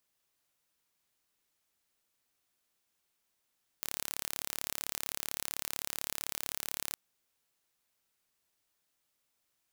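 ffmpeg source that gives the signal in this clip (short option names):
-f lavfi -i "aevalsrc='0.376*eq(mod(n,1235),0)':d=3.13:s=44100"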